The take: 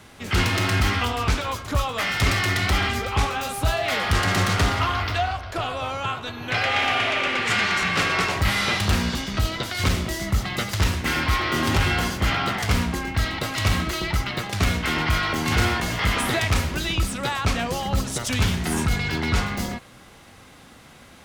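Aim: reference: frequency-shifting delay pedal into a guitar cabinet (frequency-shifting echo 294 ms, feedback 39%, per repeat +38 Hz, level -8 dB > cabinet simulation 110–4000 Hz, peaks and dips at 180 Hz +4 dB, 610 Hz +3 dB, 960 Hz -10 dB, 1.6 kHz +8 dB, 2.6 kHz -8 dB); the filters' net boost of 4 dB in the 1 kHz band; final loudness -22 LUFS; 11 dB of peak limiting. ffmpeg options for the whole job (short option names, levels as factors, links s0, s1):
-filter_complex "[0:a]equalizer=f=1000:t=o:g=8,alimiter=limit=0.141:level=0:latency=1,asplit=5[s0][s1][s2][s3][s4];[s1]adelay=294,afreqshift=38,volume=0.398[s5];[s2]adelay=588,afreqshift=76,volume=0.155[s6];[s3]adelay=882,afreqshift=114,volume=0.0603[s7];[s4]adelay=1176,afreqshift=152,volume=0.0237[s8];[s0][s5][s6][s7][s8]amix=inputs=5:normalize=0,highpass=110,equalizer=f=180:t=q:w=4:g=4,equalizer=f=610:t=q:w=4:g=3,equalizer=f=960:t=q:w=4:g=-10,equalizer=f=1600:t=q:w=4:g=8,equalizer=f=2600:t=q:w=4:g=-8,lowpass=f=4000:w=0.5412,lowpass=f=4000:w=1.3066,volume=1.41"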